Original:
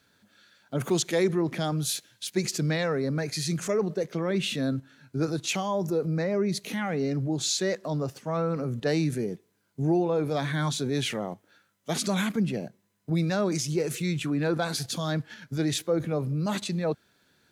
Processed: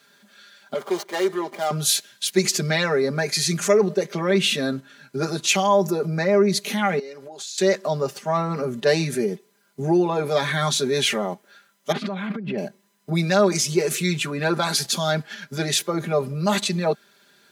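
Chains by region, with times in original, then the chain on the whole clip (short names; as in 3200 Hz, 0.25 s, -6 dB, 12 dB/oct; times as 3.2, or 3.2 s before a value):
0.74–1.71 median filter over 25 samples + HPF 470 Hz + notch 2600 Hz, Q 7.9
6.99–7.58 HPF 440 Hz + compressor 12:1, threshold -41 dBFS
11.92–12.58 negative-ratio compressor -33 dBFS + air absorption 390 m
whole clip: HPF 390 Hz 6 dB/oct; comb 5 ms, depth 84%; gain +7.5 dB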